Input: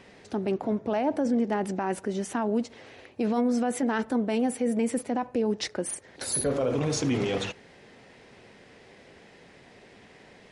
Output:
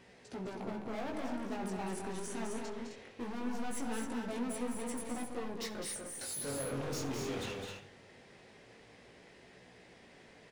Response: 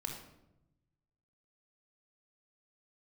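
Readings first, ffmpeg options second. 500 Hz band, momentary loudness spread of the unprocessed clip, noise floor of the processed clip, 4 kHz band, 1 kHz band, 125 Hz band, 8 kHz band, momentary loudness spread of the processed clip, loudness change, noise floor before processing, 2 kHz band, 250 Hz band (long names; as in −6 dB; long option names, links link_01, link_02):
−12.5 dB, 8 LU, −59 dBFS, −8.0 dB, −10.5 dB, −10.5 dB, −7.5 dB, 20 LU, −11.5 dB, −54 dBFS, −8.0 dB, −12.5 dB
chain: -filter_complex "[0:a]highshelf=frequency=9000:gain=5.5,bandreject=frequency=102.9:width_type=h:width=4,bandreject=frequency=205.8:width_type=h:width=4,bandreject=frequency=308.7:width_type=h:width=4,bandreject=frequency=411.6:width_type=h:width=4,bandreject=frequency=514.5:width_type=h:width=4,bandreject=frequency=617.4:width_type=h:width=4,bandreject=frequency=720.3:width_type=h:width=4,bandreject=frequency=823.2:width_type=h:width=4,bandreject=frequency=926.1:width_type=h:width=4,bandreject=frequency=1029:width_type=h:width=4,bandreject=frequency=1131.9:width_type=h:width=4,bandreject=frequency=1234.8:width_type=h:width=4,bandreject=frequency=1337.7:width_type=h:width=4,bandreject=frequency=1440.6:width_type=h:width=4,bandreject=frequency=1543.5:width_type=h:width=4,bandreject=frequency=1646.4:width_type=h:width=4,bandreject=frequency=1749.3:width_type=h:width=4,bandreject=frequency=1852.2:width_type=h:width=4,bandreject=frequency=1955.1:width_type=h:width=4,bandreject=frequency=2058:width_type=h:width=4,bandreject=frequency=2160.9:width_type=h:width=4,bandreject=frequency=2263.8:width_type=h:width=4,bandreject=frequency=2366.7:width_type=h:width=4,bandreject=frequency=2469.6:width_type=h:width=4,bandreject=frequency=2572.5:width_type=h:width=4,bandreject=frequency=2675.4:width_type=h:width=4,bandreject=frequency=2778.3:width_type=h:width=4,bandreject=frequency=2881.2:width_type=h:width=4,bandreject=frequency=2984.1:width_type=h:width=4,bandreject=frequency=3087:width_type=h:width=4,bandreject=frequency=3189.9:width_type=h:width=4,bandreject=frequency=3292.8:width_type=h:width=4,bandreject=frequency=3395.7:width_type=h:width=4,bandreject=frequency=3498.6:width_type=h:width=4,bandreject=frequency=3601.5:width_type=h:width=4,bandreject=frequency=3704.4:width_type=h:width=4,bandreject=frequency=3807.3:width_type=h:width=4,bandreject=frequency=3910.2:width_type=h:width=4,bandreject=frequency=4013.1:width_type=h:width=4,asoftclip=type=hard:threshold=-31.5dB,flanger=delay=16:depth=6.5:speed=0.21,aecho=1:1:208|259:0.501|0.473,asplit=2[link_01][link_02];[1:a]atrim=start_sample=2205,adelay=66[link_03];[link_02][link_03]afir=irnorm=-1:irlink=0,volume=-14.5dB[link_04];[link_01][link_04]amix=inputs=2:normalize=0,volume=-4dB"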